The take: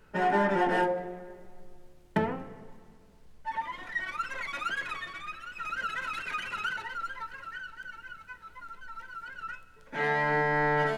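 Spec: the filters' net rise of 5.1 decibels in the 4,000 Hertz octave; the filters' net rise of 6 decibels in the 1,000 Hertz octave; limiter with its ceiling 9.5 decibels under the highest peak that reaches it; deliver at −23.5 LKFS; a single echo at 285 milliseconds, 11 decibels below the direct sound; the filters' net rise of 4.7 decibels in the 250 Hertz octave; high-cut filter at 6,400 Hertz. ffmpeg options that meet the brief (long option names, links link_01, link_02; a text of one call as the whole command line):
ffmpeg -i in.wav -af "lowpass=6400,equalizer=frequency=250:width_type=o:gain=6.5,equalizer=frequency=1000:width_type=o:gain=7,equalizer=frequency=4000:width_type=o:gain=7,alimiter=limit=-17dB:level=0:latency=1,aecho=1:1:285:0.282,volume=5.5dB" out.wav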